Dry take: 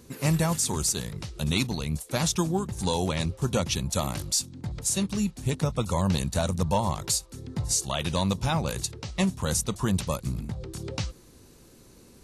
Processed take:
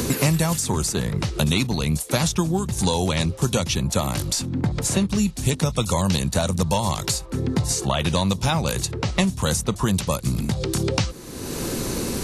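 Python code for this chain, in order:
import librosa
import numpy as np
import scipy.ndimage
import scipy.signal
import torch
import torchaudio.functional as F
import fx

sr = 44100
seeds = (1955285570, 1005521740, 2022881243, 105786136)

y = fx.band_squash(x, sr, depth_pct=100)
y = y * librosa.db_to_amplitude(4.5)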